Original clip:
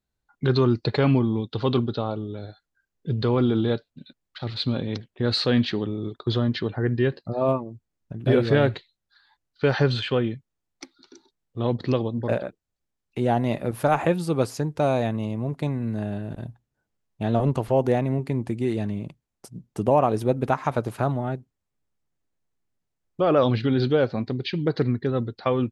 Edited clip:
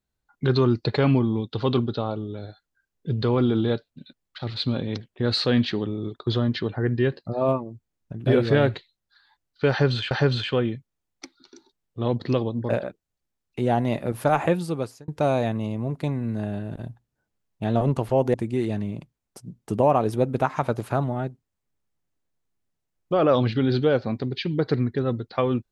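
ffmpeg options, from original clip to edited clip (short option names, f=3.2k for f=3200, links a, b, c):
-filter_complex "[0:a]asplit=4[a][b][c][d];[a]atrim=end=10.112[e];[b]atrim=start=9.698:end=14.67,asetpts=PTS-STARTPTS,afade=t=out:st=4.452:d=0.52[f];[c]atrim=start=14.67:end=17.932,asetpts=PTS-STARTPTS,afade=t=in:d=0.004:c=hsin[g];[d]atrim=start=18.418[h];[f][g]concat=n=2:v=0:a=1[i];[e][i]acrossfade=d=0.004:c1=hsin:c2=hsin[j];[j][h]acrossfade=d=0.004:c1=hsin:c2=hsin"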